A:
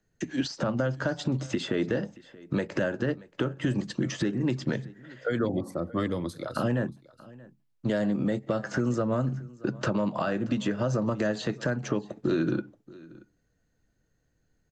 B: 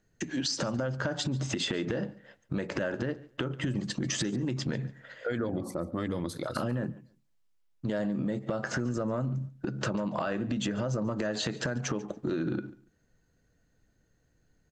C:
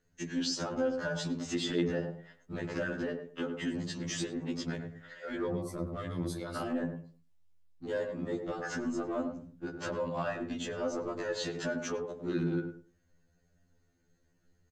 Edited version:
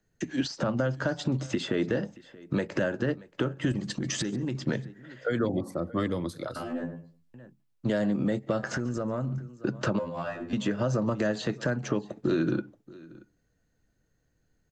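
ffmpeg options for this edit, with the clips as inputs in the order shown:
-filter_complex "[1:a]asplit=2[a][b];[2:a]asplit=2[c][d];[0:a]asplit=5[e][f][g][h][i];[e]atrim=end=3.722[j];[a]atrim=start=3.718:end=4.552[k];[f]atrim=start=4.548:end=6.562[l];[c]atrim=start=6.558:end=7.342[m];[g]atrim=start=7.338:end=8.632[n];[b]atrim=start=8.628:end=9.382[o];[h]atrim=start=9.378:end=9.992[p];[d]atrim=start=9.988:end=10.532[q];[i]atrim=start=10.528[r];[j][k]acrossfade=d=0.004:c1=hsin:c2=hsin[s];[s][l]acrossfade=d=0.004:c1=hsin:c2=hsin[t];[t][m]acrossfade=d=0.004:c1=hsin:c2=hsin[u];[u][n]acrossfade=d=0.004:c1=hsin:c2=hsin[v];[v][o]acrossfade=d=0.004:c1=hsin:c2=hsin[w];[w][p]acrossfade=d=0.004:c1=hsin:c2=hsin[x];[x][q]acrossfade=d=0.004:c1=hsin:c2=hsin[y];[y][r]acrossfade=d=0.004:c1=hsin:c2=hsin"

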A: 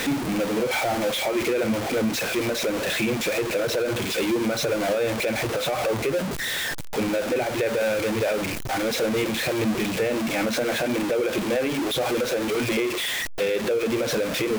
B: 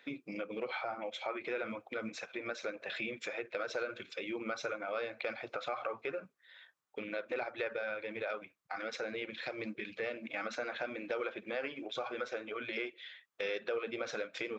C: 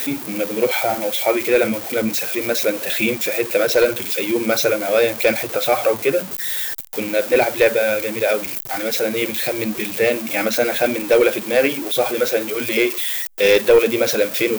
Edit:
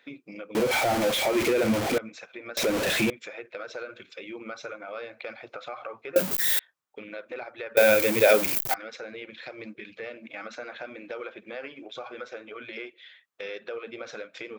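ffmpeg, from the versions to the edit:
-filter_complex "[0:a]asplit=2[a][b];[2:a]asplit=2[c][d];[1:a]asplit=5[e][f][g][h][i];[e]atrim=end=0.552[j];[a]atrim=start=0.548:end=1.982[k];[f]atrim=start=1.978:end=2.572[l];[b]atrim=start=2.568:end=3.102[m];[g]atrim=start=3.098:end=6.162[n];[c]atrim=start=6.158:end=6.592[o];[h]atrim=start=6.588:end=7.772[p];[d]atrim=start=7.768:end=8.742[q];[i]atrim=start=8.738[r];[j][k]acrossfade=d=0.004:c1=hsin:c2=hsin[s];[s][l]acrossfade=d=0.004:c1=hsin:c2=hsin[t];[t][m]acrossfade=d=0.004:c1=hsin:c2=hsin[u];[u][n]acrossfade=d=0.004:c1=hsin:c2=hsin[v];[v][o]acrossfade=d=0.004:c1=hsin:c2=hsin[w];[w][p]acrossfade=d=0.004:c1=hsin:c2=hsin[x];[x][q]acrossfade=d=0.004:c1=hsin:c2=hsin[y];[y][r]acrossfade=d=0.004:c1=hsin:c2=hsin"

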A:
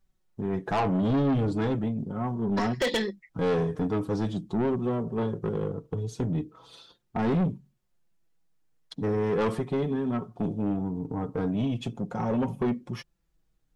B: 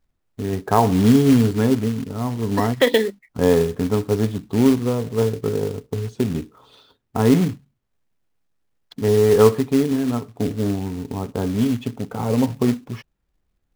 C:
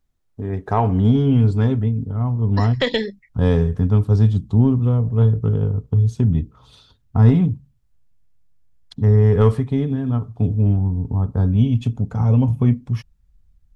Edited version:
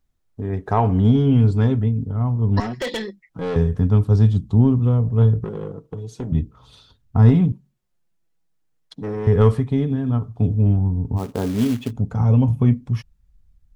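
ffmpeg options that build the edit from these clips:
-filter_complex "[0:a]asplit=3[a][b][c];[2:a]asplit=5[d][e][f][g][h];[d]atrim=end=2.602[i];[a]atrim=start=2.598:end=3.562[j];[e]atrim=start=3.558:end=5.442[k];[b]atrim=start=5.438:end=6.322[l];[f]atrim=start=6.318:end=7.522[m];[c]atrim=start=7.518:end=9.272[n];[g]atrim=start=9.268:end=11.2[o];[1:a]atrim=start=11.16:end=11.93[p];[h]atrim=start=11.89[q];[i][j]acrossfade=d=0.004:c1=hsin:c2=hsin[r];[r][k]acrossfade=d=0.004:c1=hsin:c2=hsin[s];[s][l]acrossfade=d=0.004:c1=hsin:c2=hsin[t];[t][m]acrossfade=d=0.004:c1=hsin:c2=hsin[u];[u][n]acrossfade=d=0.004:c1=hsin:c2=hsin[v];[v][o]acrossfade=d=0.004:c1=hsin:c2=hsin[w];[w][p]acrossfade=d=0.04:c1=tri:c2=tri[x];[x][q]acrossfade=d=0.04:c1=tri:c2=tri"

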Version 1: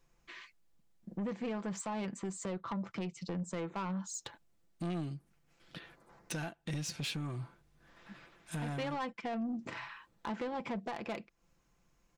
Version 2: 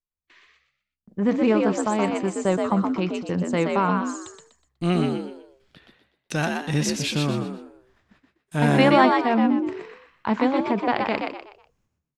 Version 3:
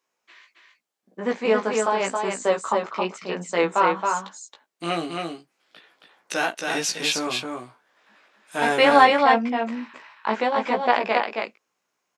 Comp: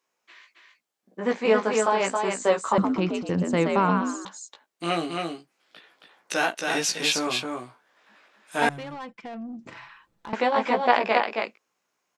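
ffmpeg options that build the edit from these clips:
-filter_complex "[2:a]asplit=3[a][b][c];[a]atrim=end=2.782[d];[1:a]atrim=start=2.778:end=4.252[e];[b]atrim=start=4.248:end=8.692[f];[0:a]atrim=start=8.688:end=10.332[g];[c]atrim=start=10.328[h];[d][e]acrossfade=d=0.004:c1=hsin:c2=hsin[i];[i][f]acrossfade=d=0.004:c1=hsin:c2=hsin[j];[j][g]acrossfade=d=0.004:c1=hsin:c2=hsin[k];[k][h]acrossfade=d=0.004:c1=hsin:c2=hsin"

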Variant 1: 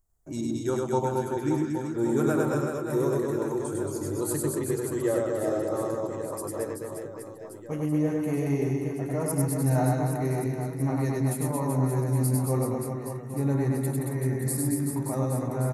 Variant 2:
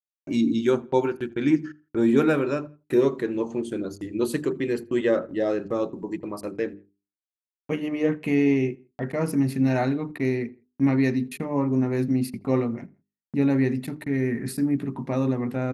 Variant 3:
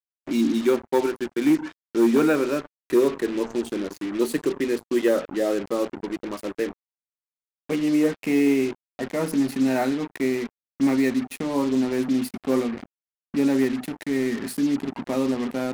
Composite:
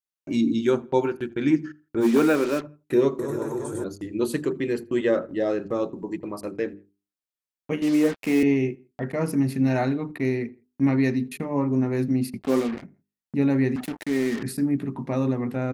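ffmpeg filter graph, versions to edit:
-filter_complex "[2:a]asplit=4[a][b][c][d];[1:a]asplit=6[e][f][g][h][i][j];[e]atrim=end=2.06[k];[a]atrim=start=2:end=2.66[l];[f]atrim=start=2.6:end=3.192[m];[0:a]atrim=start=3.188:end=3.842[n];[g]atrim=start=3.838:end=7.822[o];[b]atrim=start=7.818:end=8.432[p];[h]atrim=start=8.428:end=12.43[q];[c]atrim=start=12.37:end=12.85[r];[i]atrim=start=12.79:end=13.762[s];[d]atrim=start=13.758:end=14.432[t];[j]atrim=start=14.428[u];[k][l]acrossfade=d=0.06:c1=tri:c2=tri[v];[v][m]acrossfade=d=0.06:c1=tri:c2=tri[w];[w][n]acrossfade=d=0.004:c1=hsin:c2=hsin[x];[x][o]acrossfade=d=0.004:c1=hsin:c2=hsin[y];[y][p]acrossfade=d=0.004:c1=hsin:c2=hsin[z];[z][q]acrossfade=d=0.004:c1=hsin:c2=hsin[aa];[aa][r]acrossfade=d=0.06:c1=tri:c2=tri[ab];[ab][s]acrossfade=d=0.06:c1=tri:c2=tri[ac];[ac][t]acrossfade=d=0.004:c1=hsin:c2=hsin[ad];[ad][u]acrossfade=d=0.004:c1=hsin:c2=hsin"

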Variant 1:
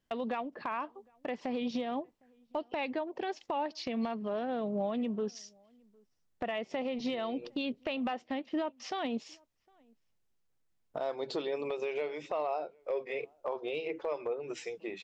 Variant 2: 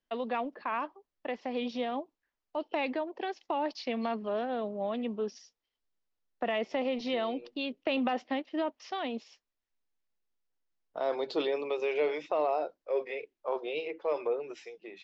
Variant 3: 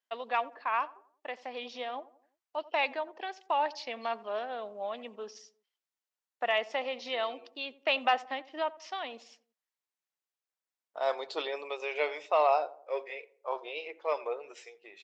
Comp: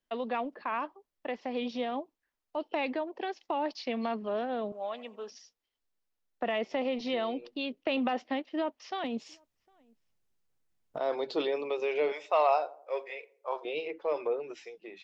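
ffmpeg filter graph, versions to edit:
-filter_complex "[2:a]asplit=2[a][b];[1:a]asplit=4[c][d][e][f];[c]atrim=end=4.722[g];[a]atrim=start=4.718:end=5.302[h];[d]atrim=start=5.298:end=9.042[i];[0:a]atrim=start=9.038:end=10.992[j];[e]atrim=start=10.988:end=12.122[k];[b]atrim=start=12.118:end=13.652[l];[f]atrim=start=13.648[m];[g][h]acrossfade=d=0.004:c1=hsin:c2=hsin[n];[n][i]acrossfade=d=0.004:c1=hsin:c2=hsin[o];[o][j]acrossfade=d=0.004:c1=hsin:c2=hsin[p];[p][k]acrossfade=d=0.004:c1=hsin:c2=hsin[q];[q][l]acrossfade=d=0.004:c1=hsin:c2=hsin[r];[r][m]acrossfade=d=0.004:c1=hsin:c2=hsin"

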